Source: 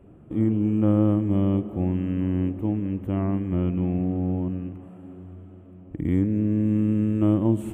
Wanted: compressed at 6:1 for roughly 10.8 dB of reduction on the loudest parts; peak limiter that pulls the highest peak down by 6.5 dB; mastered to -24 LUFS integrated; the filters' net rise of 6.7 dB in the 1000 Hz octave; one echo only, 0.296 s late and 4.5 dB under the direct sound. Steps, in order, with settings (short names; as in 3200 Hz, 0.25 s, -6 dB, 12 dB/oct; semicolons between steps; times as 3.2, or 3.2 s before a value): bell 1000 Hz +9 dB; compressor 6:1, threshold -26 dBFS; limiter -22.5 dBFS; echo 0.296 s -4.5 dB; gain +7.5 dB